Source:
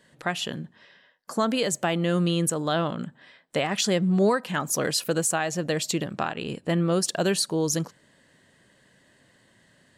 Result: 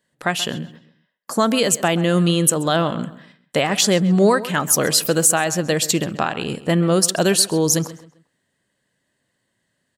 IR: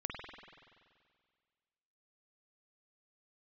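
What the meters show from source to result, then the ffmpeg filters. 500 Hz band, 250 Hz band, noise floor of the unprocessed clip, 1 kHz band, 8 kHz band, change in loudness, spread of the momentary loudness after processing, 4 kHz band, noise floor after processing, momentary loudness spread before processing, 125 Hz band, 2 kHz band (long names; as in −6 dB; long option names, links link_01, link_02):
+6.5 dB, +6.5 dB, −61 dBFS, +6.5 dB, +10.5 dB, +7.5 dB, 10 LU, +8.0 dB, −73 dBFS, 9 LU, +6.5 dB, +7.0 dB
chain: -filter_complex "[0:a]highshelf=frequency=9700:gain=10.5,agate=range=-19dB:threshold=-49dB:ratio=16:detection=peak,asplit=2[link_01][link_02];[link_02]adelay=132,lowpass=frequency=4200:poles=1,volume=-16dB,asplit=2[link_03][link_04];[link_04]adelay=132,lowpass=frequency=4200:poles=1,volume=0.33,asplit=2[link_05][link_06];[link_06]adelay=132,lowpass=frequency=4200:poles=1,volume=0.33[link_07];[link_01][link_03][link_05][link_07]amix=inputs=4:normalize=0,volume=6.5dB"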